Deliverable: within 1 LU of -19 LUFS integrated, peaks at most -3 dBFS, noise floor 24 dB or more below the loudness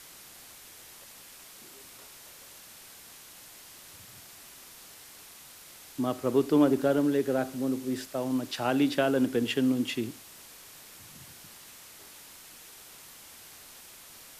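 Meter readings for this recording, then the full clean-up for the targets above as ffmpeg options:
noise floor -50 dBFS; noise floor target -52 dBFS; loudness -27.5 LUFS; peak -12.0 dBFS; loudness target -19.0 LUFS
-> -af "afftdn=nr=6:nf=-50"
-af "volume=8.5dB"

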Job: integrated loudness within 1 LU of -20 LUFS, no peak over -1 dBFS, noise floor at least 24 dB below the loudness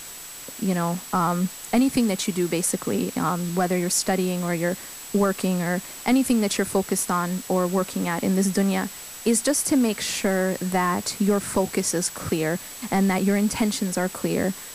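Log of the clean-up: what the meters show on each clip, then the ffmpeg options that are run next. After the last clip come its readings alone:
steady tone 7800 Hz; tone level -41 dBFS; noise floor -39 dBFS; noise floor target -48 dBFS; loudness -23.5 LUFS; peak -10.5 dBFS; loudness target -20.0 LUFS
-> -af "bandreject=f=7.8k:w=30"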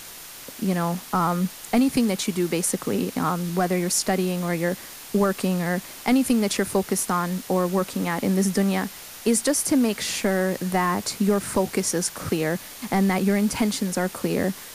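steady tone none; noise floor -41 dBFS; noise floor target -48 dBFS
-> -af "afftdn=nr=7:nf=-41"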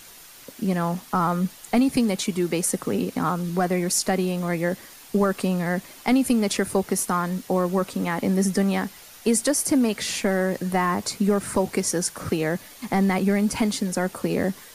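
noise floor -46 dBFS; noise floor target -48 dBFS
-> -af "afftdn=nr=6:nf=-46"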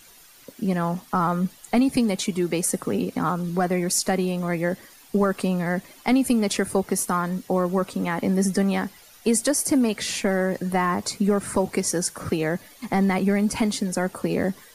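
noise floor -50 dBFS; loudness -24.0 LUFS; peak -11.0 dBFS; loudness target -20.0 LUFS
-> -af "volume=4dB"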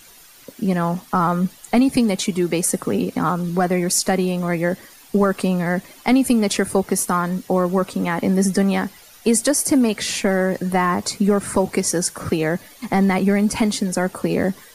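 loudness -20.0 LUFS; peak -7.0 dBFS; noise floor -46 dBFS

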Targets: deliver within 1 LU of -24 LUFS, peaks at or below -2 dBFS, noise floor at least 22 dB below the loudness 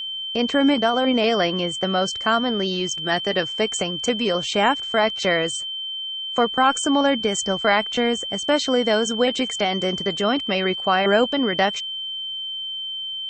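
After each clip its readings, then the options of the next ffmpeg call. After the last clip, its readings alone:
steady tone 3100 Hz; tone level -27 dBFS; loudness -21.0 LUFS; peak -6.0 dBFS; loudness target -24.0 LUFS
-> -af "bandreject=f=3.1k:w=30"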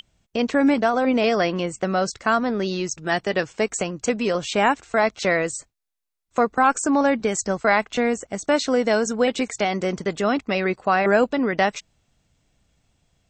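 steady tone none; loudness -22.0 LUFS; peak -6.0 dBFS; loudness target -24.0 LUFS
-> -af "volume=-2dB"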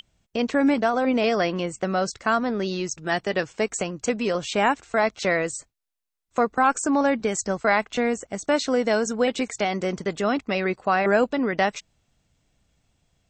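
loudness -24.0 LUFS; peak -8.0 dBFS; noise floor -76 dBFS

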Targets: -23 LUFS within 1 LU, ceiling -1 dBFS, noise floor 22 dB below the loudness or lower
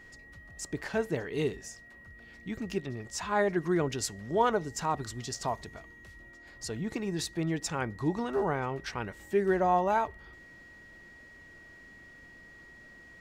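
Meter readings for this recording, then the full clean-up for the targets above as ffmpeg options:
steady tone 1900 Hz; tone level -51 dBFS; loudness -31.5 LUFS; peak -14.0 dBFS; loudness target -23.0 LUFS
-> -af "bandreject=f=1.9k:w=30"
-af "volume=8.5dB"

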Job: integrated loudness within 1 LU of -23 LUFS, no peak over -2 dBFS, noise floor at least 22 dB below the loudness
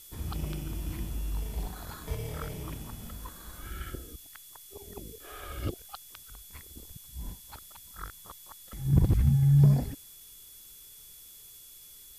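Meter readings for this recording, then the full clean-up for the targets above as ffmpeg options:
steady tone 3400 Hz; tone level -59 dBFS; noise floor -51 dBFS; noise floor target -52 dBFS; loudness -29.5 LUFS; peak -12.0 dBFS; loudness target -23.0 LUFS
-> -af "bandreject=f=3.4k:w=30"
-af "afftdn=nr=6:nf=-51"
-af "volume=6.5dB"

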